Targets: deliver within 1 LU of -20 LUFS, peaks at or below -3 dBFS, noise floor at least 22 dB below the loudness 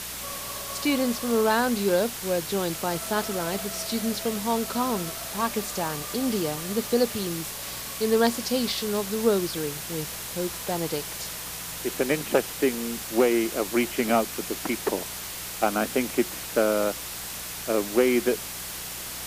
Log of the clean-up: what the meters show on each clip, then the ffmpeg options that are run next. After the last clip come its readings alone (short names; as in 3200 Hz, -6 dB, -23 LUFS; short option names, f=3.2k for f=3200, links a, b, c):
hum 60 Hz; harmonics up to 180 Hz; hum level -47 dBFS; noise floor -36 dBFS; noise floor target -49 dBFS; loudness -26.5 LUFS; peak -7.5 dBFS; loudness target -20.0 LUFS
-> -af "bandreject=f=60:t=h:w=4,bandreject=f=120:t=h:w=4,bandreject=f=180:t=h:w=4"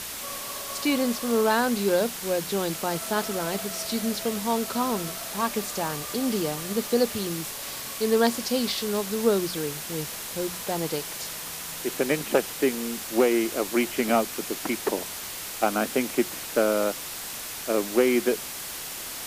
hum none; noise floor -36 dBFS; noise floor target -49 dBFS
-> -af "afftdn=nr=13:nf=-36"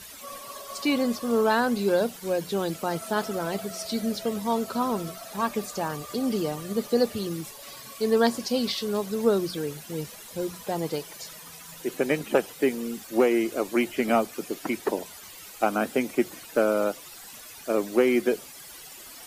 noise floor -45 dBFS; noise floor target -49 dBFS
-> -af "afftdn=nr=6:nf=-45"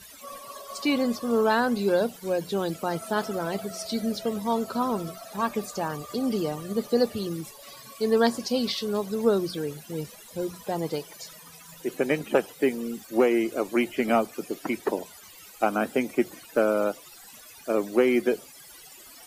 noise floor -48 dBFS; noise floor target -49 dBFS
-> -af "afftdn=nr=6:nf=-48"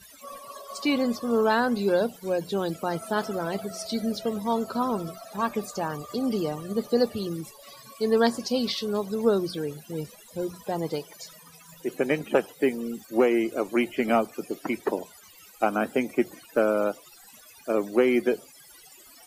noise floor -52 dBFS; loudness -27.0 LUFS; peak -8.5 dBFS; loudness target -20.0 LUFS
-> -af "volume=7dB,alimiter=limit=-3dB:level=0:latency=1"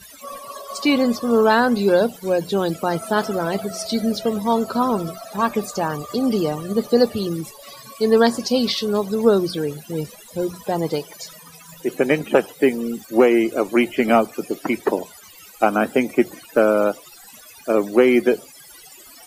loudness -20.0 LUFS; peak -3.0 dBFS; noise floor -45 dBFS